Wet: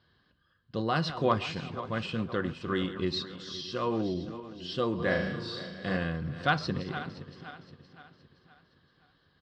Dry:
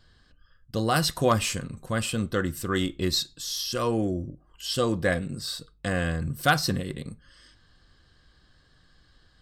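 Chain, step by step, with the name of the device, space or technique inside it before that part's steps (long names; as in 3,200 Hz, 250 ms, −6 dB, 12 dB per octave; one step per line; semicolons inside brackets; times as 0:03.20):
feedback delay that plays each chunk backwards 259 ms, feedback 64%, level −12 dB
frequency-shifting delay pedal into a guitar cabinet (echo with shifted repeats 134 ms, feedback 65%, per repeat −120 Hz, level −23 dB; loudspeaker in its box 98–4,300 Hz, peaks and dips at 170 Hz +3 dB, 380 Hz +3 dB, 1,000 Hz +4 dB)
0:04.95–0:05.97: flutter between parallel walls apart 6.3 metres, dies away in 0.59 s
level −5.5 dB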